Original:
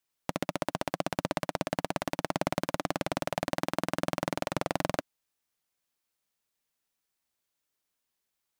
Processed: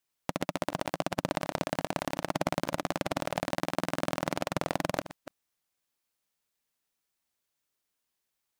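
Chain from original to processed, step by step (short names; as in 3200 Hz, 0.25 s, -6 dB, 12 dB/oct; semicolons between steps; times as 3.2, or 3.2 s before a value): reverse delay 0.177 s, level -13 dB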